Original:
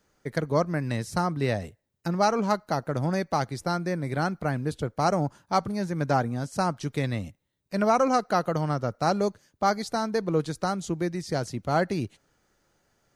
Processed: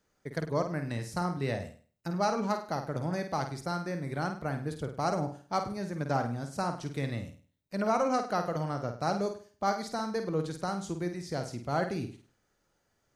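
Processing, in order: flutter echo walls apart 8.7 m, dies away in 0.41 s; trim -6.5 dB

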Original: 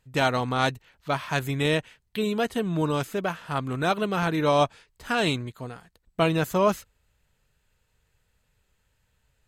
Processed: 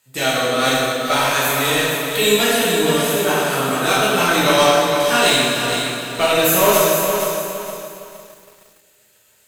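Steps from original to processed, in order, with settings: high-pass 95 Hz; RIAA curve recording; in parallel at +1 dB: peak limiter -14 dBFS, peak gain reduction 9.5 dB; on the sum: rotary cabinet horn 0.75 Hz, later 7.5 Hz, at 3.17 s; overload inside the chain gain 15 dB; on a send: bucket-brigade echo 328 ms, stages 2048, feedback 51%, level -18 dB; on the sum: plate-style reverb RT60 2.1 s, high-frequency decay 0.75×, DRR -9 dB; bit-crushed delay 463 ms, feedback 35%, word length 7-bit, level -6.5 dB; trim -1 dB

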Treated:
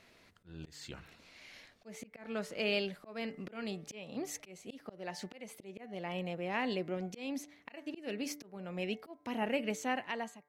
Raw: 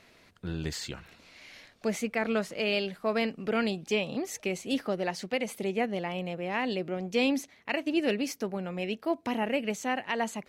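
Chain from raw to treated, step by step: fade out at the end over 0.51 s; de-hum 146.6 Hz, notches 15; slow attack 371 ms; trim -4 dB

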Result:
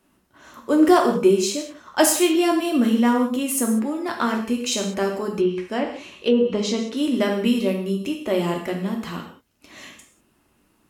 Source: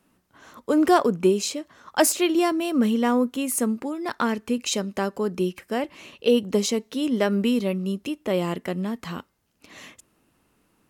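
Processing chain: gated-style reverb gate 220 ms falling, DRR 1 dB; 5.37–6.97 s: low-pass that closes with the level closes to 1.6 kHz, closed at -13 dBFS

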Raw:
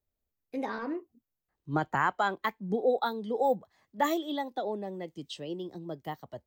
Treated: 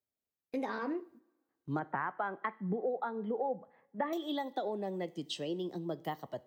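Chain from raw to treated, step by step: high-pass 140 Hz; gate -59 dBFS, range -8 dB; 1.79–4.13 s: low-pass 2.2 kHz 24 dB/octave; compression 5:1, threshold -35 dBFS, peak gain reduction 12.5 dB; two-slope reverb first 0.67 s, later 1.9 s, from -20 dB, DRR 17.5 dB; trim +2.5 dB

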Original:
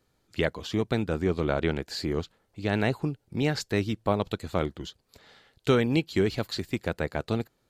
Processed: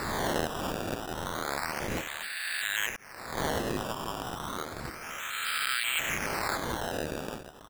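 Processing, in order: reverse spectral sustain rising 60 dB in 2.77 s; high-pass 1.5 kHz 24 dB/octave; on a send: delay 325 ms -11 dB; 2.96–3.38 s: on the sum: expander -24 dBFS; distance through air 110 m; decimation with a swept rate 14×, swing 100% 0.31 Hz; in parallel at -1.5 dB: peak limiter -24 dBFS, peak gain reduction 10.5 dB; on the sum: trim -3 dB

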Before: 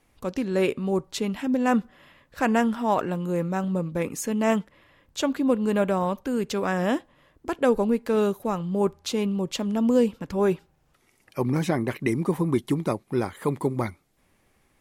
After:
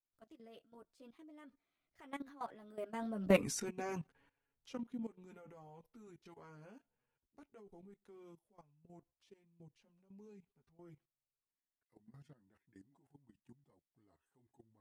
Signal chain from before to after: Doppler pass-by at 3.39 s, 58 m/s, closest 4.7 m; chorus voices 6, 0.19 Hz, delay 11 ms, depth 3.8 ms; level held to a coarse grid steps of 16 dB; trim +7.5 dB

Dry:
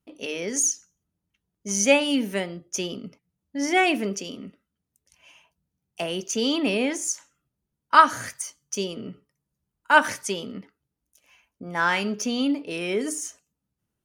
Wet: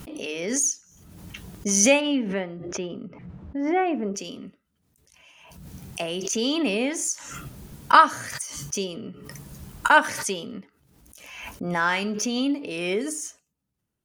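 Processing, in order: 2.00–4.14 s: low-pass 2.6 kHz -> 1.1 kHz 12 dB/octave; swell ahead of each attack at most 41 dB/s; trim -1 dB

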